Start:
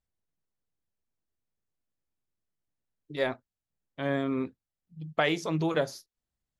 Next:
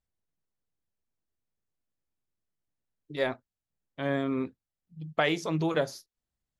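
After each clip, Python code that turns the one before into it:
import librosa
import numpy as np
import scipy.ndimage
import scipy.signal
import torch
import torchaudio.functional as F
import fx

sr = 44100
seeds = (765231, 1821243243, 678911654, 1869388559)

y = x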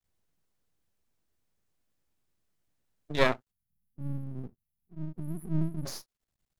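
y = fx.spec_erase(x, sr, start_s=3.51, length_s=2.35, low_hz=250.0, high_hz=9600.0)
y = np.maximum(y, 0.0)
y = y * 10.0 ** (8.0 / 20.0)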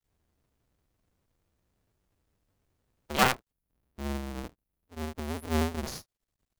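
y = fx.cycle_switch(x, sr, every=2, mode='inverted')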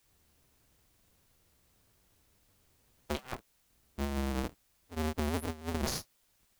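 y = fx.over_compress(x, sr, threshold_db=-34.0, ratio=-0.5)
y = fx.quant_dither(y, sr, seeds[0], bits=12, dither='triangular')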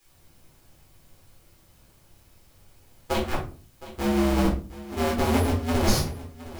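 y = x + 10.0 ** (-16.5 / 20.0) * np.pad(x, (int(714 * sr / 1000.0), 0))[:len(x)]
y = fx.room_shoebox(y, sr, seeds[1], volume_m3=230.0, walls='furnished', distance_m=4.0)
y = y * 10.0 ** (3.0 / 20.0)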